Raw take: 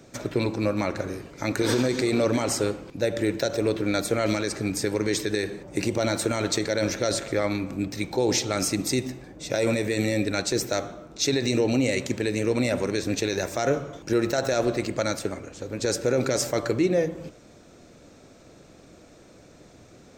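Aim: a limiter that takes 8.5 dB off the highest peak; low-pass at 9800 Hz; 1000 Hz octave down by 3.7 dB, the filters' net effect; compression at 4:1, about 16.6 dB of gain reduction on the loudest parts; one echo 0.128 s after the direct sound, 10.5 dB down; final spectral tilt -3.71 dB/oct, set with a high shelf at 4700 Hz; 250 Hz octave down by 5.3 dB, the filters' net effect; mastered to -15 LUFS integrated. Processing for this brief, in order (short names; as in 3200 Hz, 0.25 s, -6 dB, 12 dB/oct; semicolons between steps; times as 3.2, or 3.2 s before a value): LPF 9800 Hz; bell 250 Hz -7 dB; bell 1000 Hz -5.5 dB; high shelf 4700 Hz +4.5 dB; compressor 4:1, threshold -42 dBFS; limiter -32.5 dBFS; echo 0.128 s -10.5 dB; gain +29.5 dB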